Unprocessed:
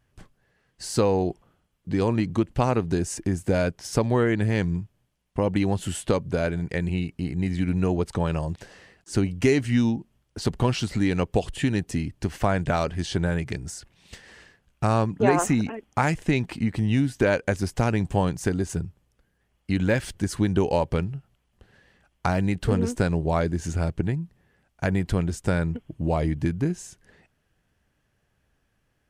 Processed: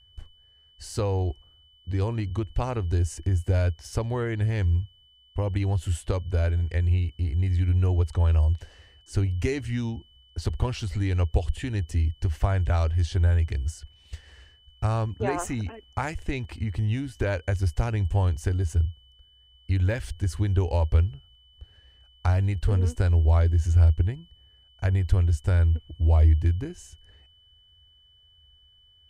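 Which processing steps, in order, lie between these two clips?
whine 3000 Hz -50 dBFS; resonant low shelf 110 Hz +12.5 dB, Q 3; gain -6.5 dB

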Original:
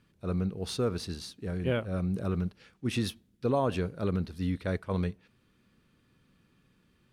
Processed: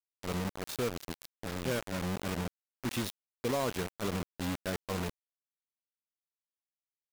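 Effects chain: low shelf 71 Hz -11 dB; in parallel at -1.5 dB: compressor 6:1, threshold -42 dBFS, peak gain reduction 17.5 dB; on the sum: bit-crush 5-bit; gain -5.5 dB

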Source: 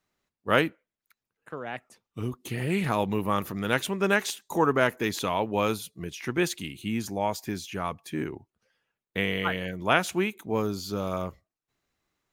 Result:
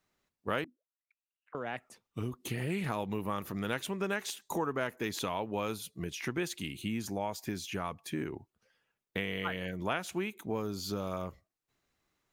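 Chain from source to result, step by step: 0.64–1.55 auto-wah 250–3000 Hz, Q 14, down, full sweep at -32 dBFS; compressor 3:1, threshold -33 dBFS, peak gain reduction 13 dB

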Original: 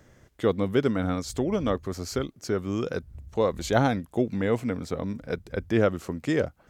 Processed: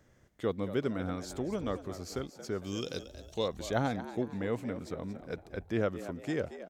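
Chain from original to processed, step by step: 2.64–3.48 resonant high shelf 2400 Hz +11.5 dB, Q 1.5; frequency-shifting echo 0.228 s, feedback 41%, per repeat +88 Hz, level -13 dB; gain -8.5 dB

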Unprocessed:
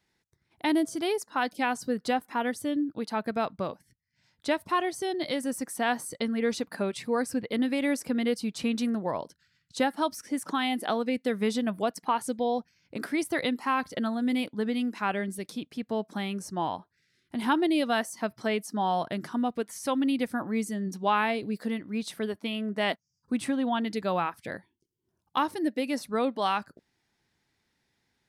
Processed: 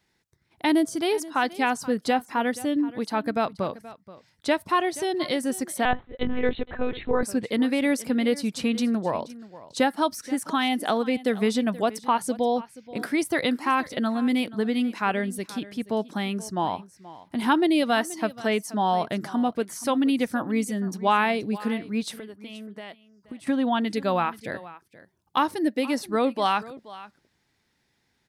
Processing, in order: 22.14–23.47 compressor 12:1, threshold -41 dBFS, peak gain reduction 18 dB; echo 0.478 s -18 dB; 5.85–7.23 monotone LPC vocoder at 8 kHz 250 Hz; gain +4 dB

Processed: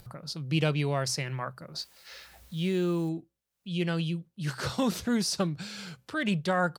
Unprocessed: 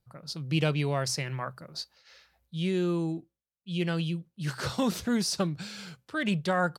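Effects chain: upward compressor, threshold -36 dBFS; 1.78–3.09 requantised 10-bit, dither triangular

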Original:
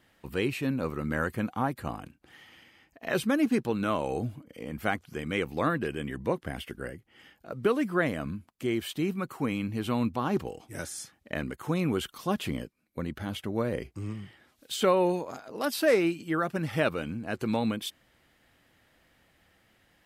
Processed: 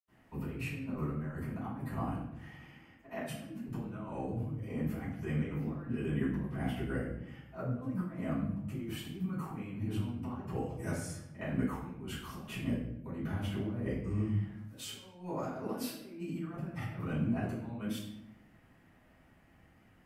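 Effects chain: fifteen-band EQ 160 Hz +5 dB, 1000 Hz +3 dB, 4000 Hz -8 dB; negative-ratio compressor -33 dBFS, ratio -0.5; reverb RT60 0.80 s, pre-delay 76 ms, DRR -60 dB

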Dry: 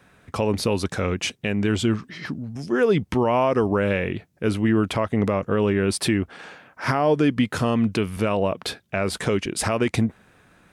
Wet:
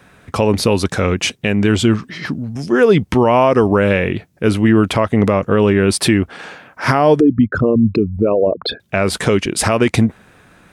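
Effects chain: 7.2–8.8 formant sharpening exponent 3; gain +8 dB

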